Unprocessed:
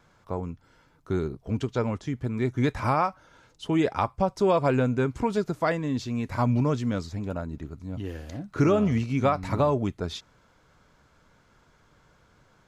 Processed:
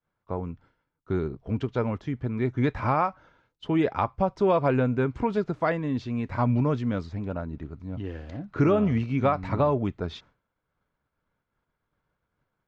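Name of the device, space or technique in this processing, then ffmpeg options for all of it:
hearing-loss simulation: -af "lowpass=3.1k,agate=range=-33dB:threshold=-48dB:ratio=3:detection=peak"

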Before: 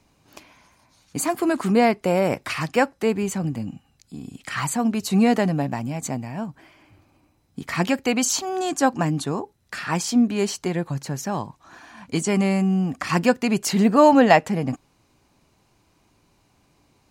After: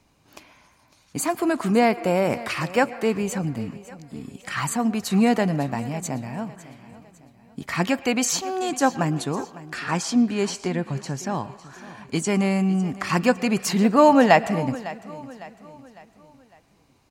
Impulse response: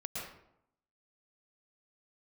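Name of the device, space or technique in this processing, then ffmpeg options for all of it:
filtered reverb send: -filter_complex "[0:a]asettb=1/sr,asplit=3[a][b][c];[a]atrim=end=9.744[d];[b]atrim=start=9.74:end=11.35,asetpts=PTS-STARTPTS,afade=t=in:d=0.004:c=qsin,afade=t=out:st=1.606:d=0.004:c=qsin,lowpass=9.3k[e];[c]atrim=start=11.346[f];[d][e]acrossfade=d=0.004:c1=hsin:c2=qsin[g];[g][f]acrossfade=d=0.004:c1=qsin:c2=hsin,asplit=2[h][i];[i]highpass=570,lowpass=4.5k[j];[1:a]atrim=start_sample=2205[k];[j][k]afir=irnorm=-1:irlink=0,volume=-15dB[l];[h][l]amix=inputs=2:normalize=0,aecho=1:1:554|1108|1662|2216:0.133|0.0573|0.0247|0.0106,volume=-1dB"

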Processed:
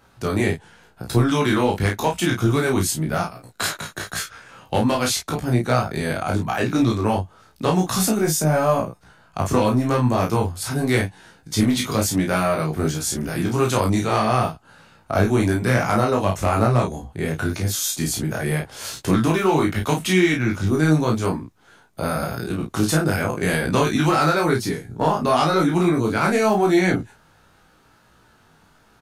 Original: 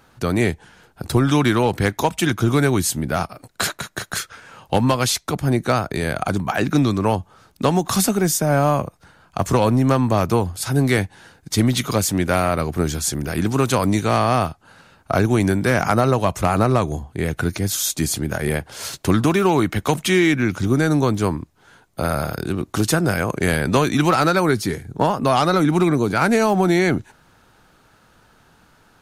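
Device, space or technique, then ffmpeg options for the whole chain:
double-tracked vocal: -filter_complex "[0:a]asplit=2[a][b];[b]adelay=32,volume=-3.5dB[c];[a][c]amix=inputs=2:normalize=0,flanger=delay=17:depth=2.8:speed=0.89"

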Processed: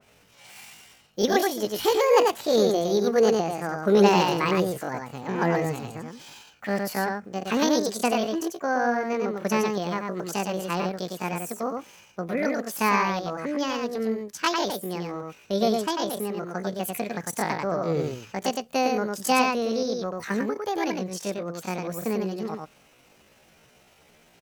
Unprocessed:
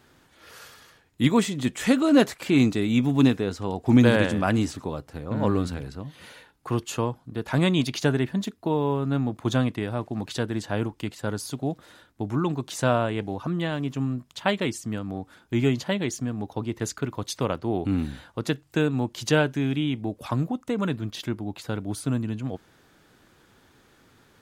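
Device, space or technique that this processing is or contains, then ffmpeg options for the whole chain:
chipmunk voice: -af "equalizer=f=190:w=0.97:g=-3,aecho=1:1:98:0.668,asetrate=74167,aresample=44100,atempo=0.594604,adynamicequalizer=threshold=0.0178:dfrequency=2200:dqfactor=0.7:tfrequency=2200:tqfactor=0.7:attack=5:release=100:ratio=0.375:range=2:mode=cutabove:tftype=highshelf"

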